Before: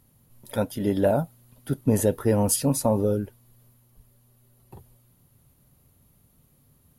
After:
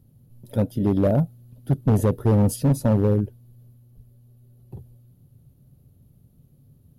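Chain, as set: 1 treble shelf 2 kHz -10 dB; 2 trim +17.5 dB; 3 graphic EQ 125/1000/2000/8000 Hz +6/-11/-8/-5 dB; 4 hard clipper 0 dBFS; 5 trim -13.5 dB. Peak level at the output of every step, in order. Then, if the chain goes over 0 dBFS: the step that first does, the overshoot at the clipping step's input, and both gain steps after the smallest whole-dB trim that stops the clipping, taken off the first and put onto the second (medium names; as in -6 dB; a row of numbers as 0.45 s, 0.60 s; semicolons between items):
-9.5 dBFS, +8.0 dBFS, +9.5 dBFS, 0.0 dBFS, -13.5 dBFS; step 2, 9.5 dB; step 2 +7.5 dB, step 5 -3.5 dB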